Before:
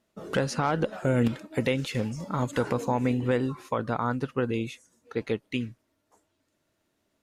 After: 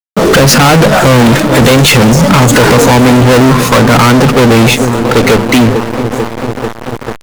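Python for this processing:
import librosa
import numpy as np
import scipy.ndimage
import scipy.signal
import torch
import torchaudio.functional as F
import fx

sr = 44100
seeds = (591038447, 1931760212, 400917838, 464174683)

p1 = fx.hum_notches(x, sr, base_hz=50, count=4)
p2 = p1 + fx.echo_wet_lowpass(p1, sr, ms=442, feedback_pct=78, hz=1100.0, wet_db=-20, dry=0)
p3 = fx.fuzz(p2, sr, gain_db=41.0, gate_db=-49.0)
p4 = fx.power_curve(p3, sr, exponent=0.5)
y = F.gain(torch.from_numpy(p4), 8.5).numpy()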